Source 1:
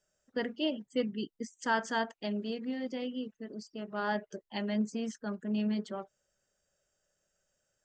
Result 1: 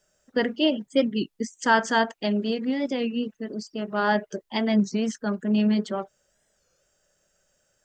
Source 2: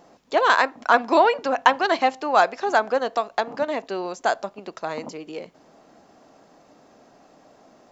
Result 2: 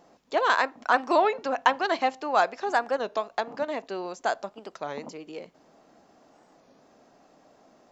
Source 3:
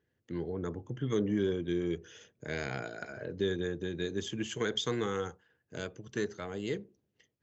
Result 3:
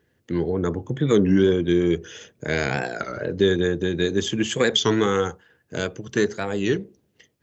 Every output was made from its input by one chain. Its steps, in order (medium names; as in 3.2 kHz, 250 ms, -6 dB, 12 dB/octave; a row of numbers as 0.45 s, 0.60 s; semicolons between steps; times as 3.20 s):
peaking EQ 110 Hz -3 dB 0.34 oct; warped record 33 1/3 rpm, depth 160 cents; peak normalisation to -6 dBFS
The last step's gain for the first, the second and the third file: +10.0 dB, -5.0 dB, +12.5 dB